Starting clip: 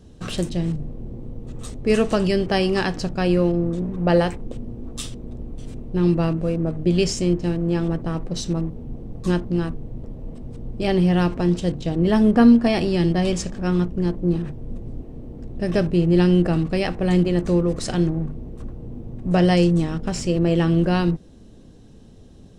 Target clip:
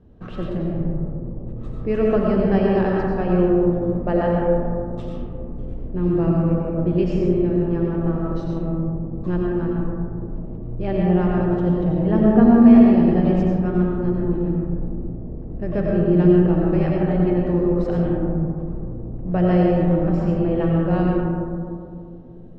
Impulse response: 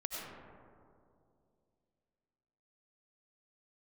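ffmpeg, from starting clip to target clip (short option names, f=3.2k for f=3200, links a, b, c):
-filter_complex "[0:a]lowpass=1.6k[a];[1:a]atrim=start_sample=2205[b];[a][b]afir=irnorm=-1:irlink=0,volume=-1dB"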